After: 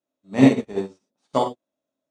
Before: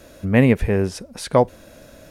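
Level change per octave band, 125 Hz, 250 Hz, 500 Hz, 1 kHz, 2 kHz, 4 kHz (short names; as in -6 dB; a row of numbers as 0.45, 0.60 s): -8.0, +0.5, -5.0, -1.5, -6.5, -2.0 dB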